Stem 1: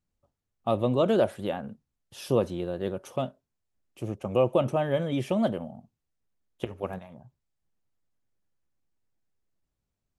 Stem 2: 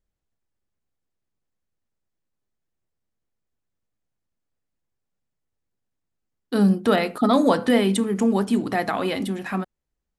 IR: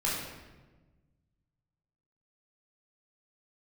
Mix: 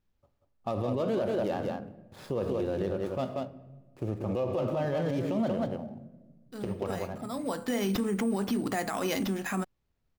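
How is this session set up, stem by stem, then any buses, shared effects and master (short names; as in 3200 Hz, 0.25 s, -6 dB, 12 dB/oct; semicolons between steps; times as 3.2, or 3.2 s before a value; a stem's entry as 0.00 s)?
+2.0 dB, 0.00 s, send -17.5 dB, echo send -5.5 dB, median filter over 15 samples
-3.0 dB, 0.00 s, no send, no echo send, high shelf 4700 Hz +5.5 dB; sample-and-hold 5×; auto duck -17 dB, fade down 0.25 s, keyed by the first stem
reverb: on, RT60 1.2 s, pre-delay 13 ms
echo: echo 0.186 s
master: limiter -22 dBFS, peak gain reduction 16 dB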